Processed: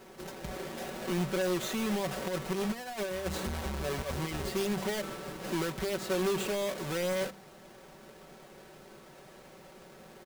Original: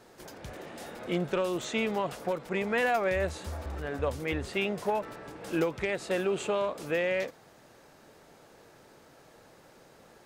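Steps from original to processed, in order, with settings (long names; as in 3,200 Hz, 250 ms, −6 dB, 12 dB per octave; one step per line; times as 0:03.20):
each half-wave held at its own peak
hum removal 64.97 Hz, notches 3
0:02.16–0:04.49: compressor whose output falls as the input rises −29 dBFS, ratio −0.5
brickwall limiter −26.5 dBFS, peak gain reduction 9.5 dB
comb filter 5.3 ms
level −2.5 dB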